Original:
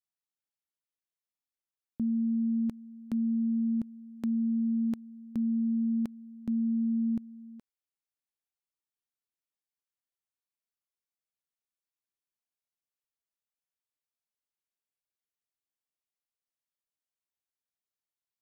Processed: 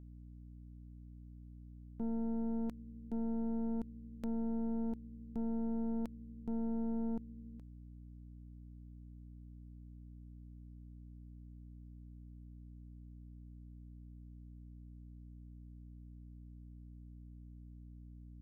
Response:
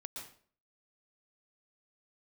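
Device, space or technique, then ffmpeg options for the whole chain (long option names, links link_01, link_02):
valve amplifier with mains hum: -af "aeval=exprs='(tanh(35.5*val(0)+0.7)-tanh(0.7))/35.5':channel_layout=same,aeval=exprs='val(0)+0.00398*(sin(2*PI*60*n/s)+sin(2*PI*2*60*n/s)/2+sin(2*PI*3*60*n/s)/3+sin(2*PI*4*60*n/s)/4+sin(2*PI*5*60*n/s)/5)':channel_layout=same,volume=-3dB"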